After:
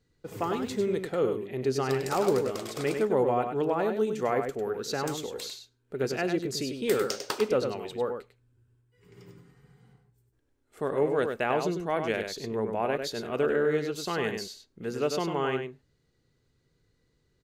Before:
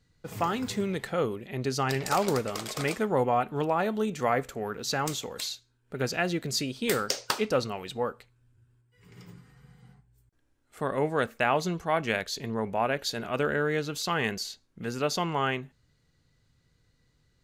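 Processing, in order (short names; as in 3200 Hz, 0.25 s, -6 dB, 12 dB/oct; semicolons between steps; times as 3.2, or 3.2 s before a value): bell 390 Hz +9.5 dB 0.88 oct; outdoor echo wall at 17 m, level -6 dB; gain -5 dB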